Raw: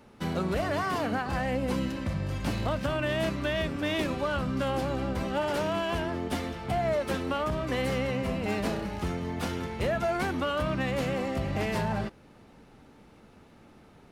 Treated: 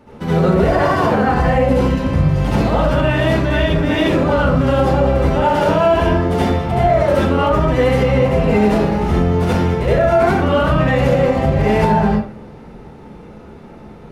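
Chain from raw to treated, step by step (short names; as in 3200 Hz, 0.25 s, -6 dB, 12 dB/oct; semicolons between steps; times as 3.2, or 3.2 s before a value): high shelf 2000 Hz -9.5 dB; reverb RT60 0.50 s, pre-delay 66 ms, DRR -8.5 dB; maximiser +12 dB; gain -4 dB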